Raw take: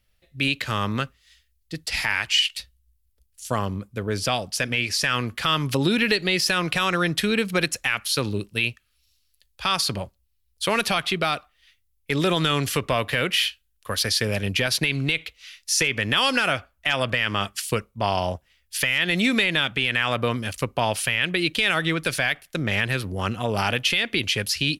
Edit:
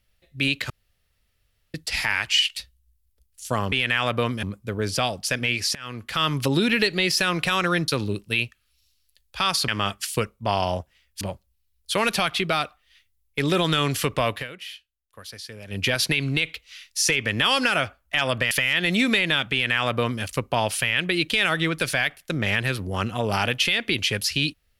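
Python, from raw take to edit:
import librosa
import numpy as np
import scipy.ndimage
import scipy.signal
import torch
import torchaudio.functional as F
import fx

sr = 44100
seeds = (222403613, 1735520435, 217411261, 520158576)

y = fx.edit(x, sr, fx.room_tone_fill(start_s=0.7, length_s=1.04),
    fx.fade_in_from(start_s=5.04, length_s=0.53, floor_db=-23.5),
    fx.cut(start_s=7.17, length_s=0.96),
    fx.fade_down_up(start_s=13.02, length_s=1.54, db=-16.0, fade_s=0.18),
    fx.move(start_s=17.23, length_s=1.53, to_s=9.93),
    fx.duplicate(start_s=19.77, length_s=0.71, to_s=3.72), tone=tone)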